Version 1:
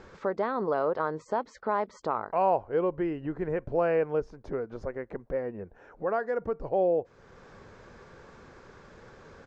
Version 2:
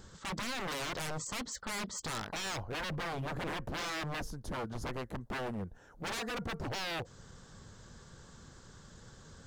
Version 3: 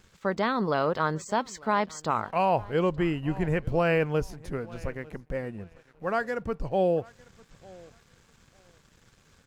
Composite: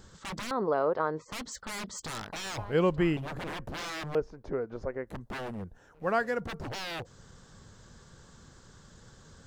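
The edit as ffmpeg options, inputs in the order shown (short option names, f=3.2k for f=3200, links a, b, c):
-filter_complex "[0:a]asplit=2[a][b];[2:a]asplit=2[c][d];[1:a]asplit=5[e][f][g][h][i];[e]atrim=end=0.512[j];[a]atrim=start=0.508:end=1.322[k];[f]atrim=start=1.318:end=2.582[l];[c]atrim=start=2.578:end=3.172[m];[g]atrim=start=3.168:end=4.152[n];[b]atrim=start=4.148:end=5.072[o];[h]atrim=start=5.068:end=5.942[p];[d]atrim=start=5.938:end=6.402[q];[i]atrim=start=6.398[r];[j][k]acrossfade=d=0.004:c1=hsin:c2=hsin[s];[s][l]acrossfade=d=0.004:c1=hsin:c2=hsin[t];[t][m]acrossfade=d=0.004:c1=hsin:c2=hsin[u];[u][n]acrossfade=d=0.004:c1=hsin:c2=hsin[v];[v][o]acrossfade=d=0.004:c1=hsin:c2=hsin[w];[w][p]acrossfade=d=0.004:c1=hsin:c2=hsin[x];[x][q]acrossfade=d=0.004:c1=hsin:c2=hsin[y];[y][r]acrossfade=d=0.004:c1=hsin:c2=hsin"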